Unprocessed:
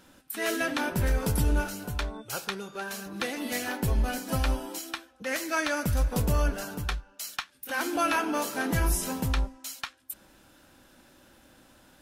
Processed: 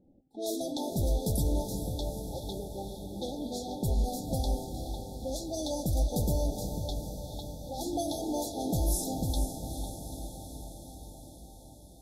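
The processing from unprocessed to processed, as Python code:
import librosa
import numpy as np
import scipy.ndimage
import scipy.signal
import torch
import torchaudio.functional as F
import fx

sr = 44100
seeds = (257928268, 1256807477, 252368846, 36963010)

y = fx.env_lowpass(x, sr, base_hz=400.0, full_db=-25.0)
y = fx.brickwall_bandstop(y, sr, low_hz=890.0, high_hz=3300.0)
y = fx.echo_diffused(y, sr, ms=452, feedback_pct=69, wet_db=-8)
y = F.gain(torch.from_numpy(y), -2.5).numpy()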